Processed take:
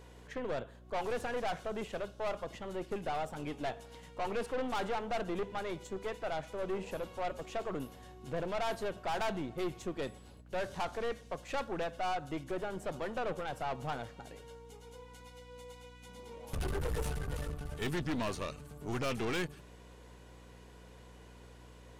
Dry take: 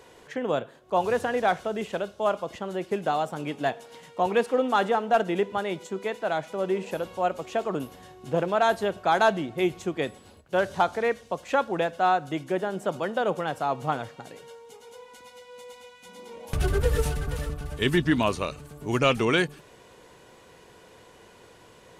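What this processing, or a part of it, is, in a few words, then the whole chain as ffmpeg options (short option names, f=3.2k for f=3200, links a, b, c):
valve amplifier with mains hum: -af "aeval=exprs='(tanh(22.4*val(0)+0.5)-tanh(0.5))/22.4':c=same,aeval=exprs='val(0)+0.00316*(sin(2*PI*60*n/s)+sin(2*PI*2*60*n/s)/2+sin(2*PI*3*60*n/s)/3+sin(2*PI*4*60*n/s)/4+sin(2*PI*5*60*n/s)/5)':c=same,volume=-4.5dB"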